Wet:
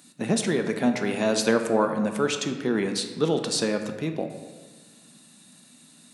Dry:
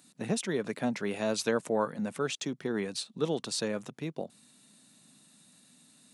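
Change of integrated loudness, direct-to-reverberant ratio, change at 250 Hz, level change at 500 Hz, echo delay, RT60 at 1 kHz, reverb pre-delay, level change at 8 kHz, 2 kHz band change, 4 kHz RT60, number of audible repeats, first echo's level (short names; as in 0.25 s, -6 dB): +7.5 dB, 5.5 dB, +8.5 dB, +7.0 dB, none, 1.4 s, 3 ms, +7.0 dB, +7.5 dB, 0.90 s, none, none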